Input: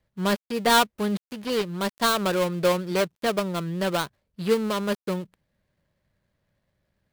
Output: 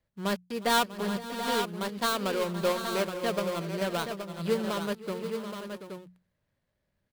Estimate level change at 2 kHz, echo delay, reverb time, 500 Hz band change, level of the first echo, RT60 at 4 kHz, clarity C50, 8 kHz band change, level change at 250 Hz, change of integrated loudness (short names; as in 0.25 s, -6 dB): -5.0 dB, 0.358 s, none, -5.0 dB, -19.5 dB, none, none, -5.0 dB, -5.5 dB, -5.5 dB